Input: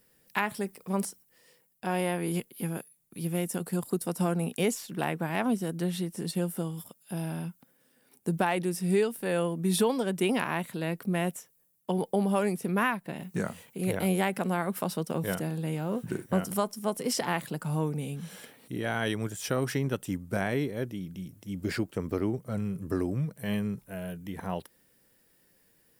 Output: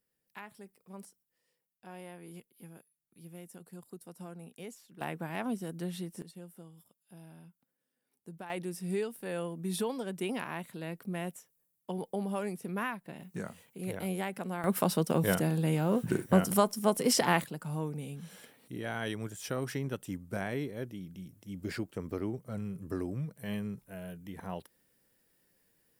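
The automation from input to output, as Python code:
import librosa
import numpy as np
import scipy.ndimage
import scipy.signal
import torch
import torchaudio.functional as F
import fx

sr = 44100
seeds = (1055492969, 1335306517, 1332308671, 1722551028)

y = fx.gain(x, sr, db=fx.steps((0.0, -18.0), (5.01, -7.0), (6.22, -18.5), (8.5, -8.0), (14.64, 3.0), (17.44, -6.0)))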